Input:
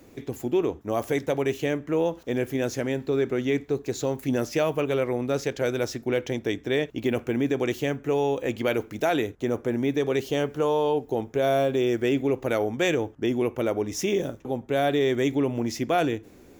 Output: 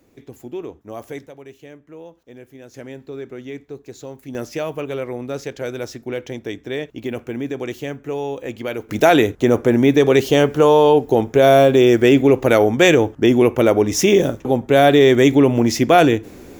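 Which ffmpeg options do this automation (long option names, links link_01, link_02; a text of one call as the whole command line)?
ffmpeg -i in.wav -af "asetnsamples=nb_out_samples=441:pad=0,asendcmd='1.27 volume volume -14.5dB;2.74 volume volume -7.5dB;4.35 volume volume -1dB;8.89 volume volume 11.5dB',volume=-6dB" out.wav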